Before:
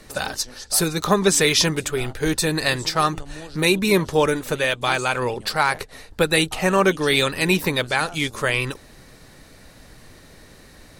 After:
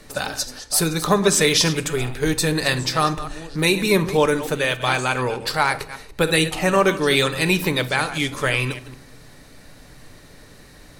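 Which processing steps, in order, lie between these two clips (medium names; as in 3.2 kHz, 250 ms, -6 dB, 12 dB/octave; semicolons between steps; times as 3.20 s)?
chunks repeated in reverse 149 ms, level -13.5 dB; on a send: reverberation RT60 0.60 s, pre-delay 7 ms, DRR 11 dB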